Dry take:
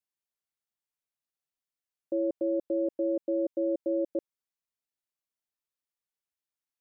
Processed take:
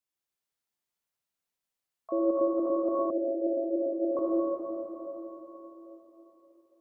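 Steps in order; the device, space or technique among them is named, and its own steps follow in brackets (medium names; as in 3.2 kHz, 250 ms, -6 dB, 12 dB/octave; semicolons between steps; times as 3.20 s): shimmer-style reverb (harmony voices +12 st -12 dB; reverberation RT60 4.2 s, pre-delay 56 ms, DRR -3 dB); 3.10–4.17 s: elliptic band-pass 260–670 Hz, stop band 40 dB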